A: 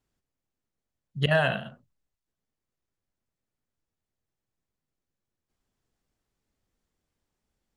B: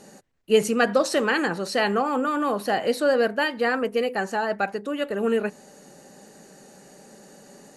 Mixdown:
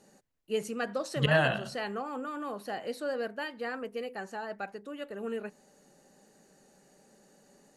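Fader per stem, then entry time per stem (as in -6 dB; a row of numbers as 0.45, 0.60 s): -2.0, -13.0 dB; 0.00, 0.00 s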